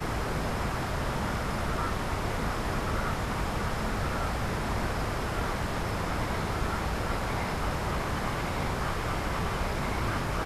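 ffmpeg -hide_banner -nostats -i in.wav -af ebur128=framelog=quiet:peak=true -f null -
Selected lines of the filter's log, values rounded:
Integrated loudness:
  I:         -31.1 LUFS
  Threshold: -41.1 LUFS
Loudness range:
  LRA:         0.1 LU
  Threshold: -51.1 LUFS
  LRA low:   -31.2 LUFS
  LRA high:  -31.1 LUFS
True peak:
  Peak:      -16.3 dBFS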